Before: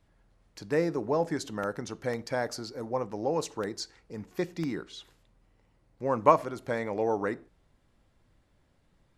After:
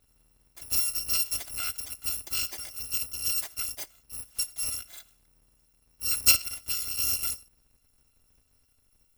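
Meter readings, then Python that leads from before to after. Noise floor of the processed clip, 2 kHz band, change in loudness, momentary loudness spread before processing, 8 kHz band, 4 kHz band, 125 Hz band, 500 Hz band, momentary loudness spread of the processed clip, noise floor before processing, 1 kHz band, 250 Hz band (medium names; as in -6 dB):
-68 dBFS, +1.0 dB, +3.5 dB, 14 LU, +17.5 dB, +13.0 dB, -10.0 dB, -26.5 dB, 14 LU, -68 dBFS, -18.0 dB, -22.0 dB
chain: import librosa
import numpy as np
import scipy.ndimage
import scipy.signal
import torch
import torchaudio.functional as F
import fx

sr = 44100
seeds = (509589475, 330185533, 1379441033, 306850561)

y = fx.bit_reversed(x, sr, seeds[0], block=256)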